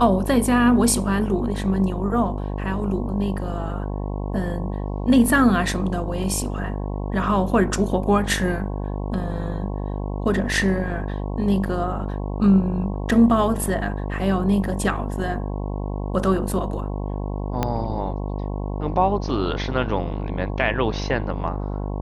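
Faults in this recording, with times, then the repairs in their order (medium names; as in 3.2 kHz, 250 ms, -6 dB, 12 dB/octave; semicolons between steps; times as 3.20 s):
buzz 50 Hz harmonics 22 -27 dBFS
17.63 s: pop -8 dBFS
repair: de-click; de-hum 50 Hz, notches 22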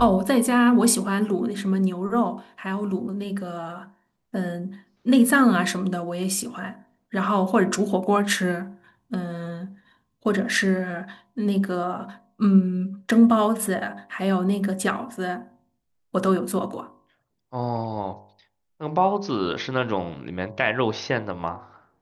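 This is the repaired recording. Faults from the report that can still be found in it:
17.63 s: pop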